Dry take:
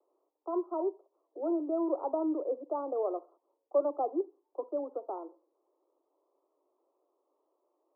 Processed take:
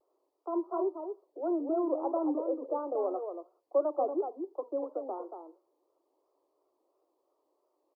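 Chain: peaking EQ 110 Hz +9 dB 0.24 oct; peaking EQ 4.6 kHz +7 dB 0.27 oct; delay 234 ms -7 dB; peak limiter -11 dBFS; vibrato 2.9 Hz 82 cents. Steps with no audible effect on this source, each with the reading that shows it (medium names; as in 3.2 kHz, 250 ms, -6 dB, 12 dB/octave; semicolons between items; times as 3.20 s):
peaking EQ 110 Hz: input has nothing below 240 Hz; peaking EQ 4.6 kHz: input has nothing above 1.3 kHz; peak limiter -11 dBFS: peak at its input -18.0 dBFS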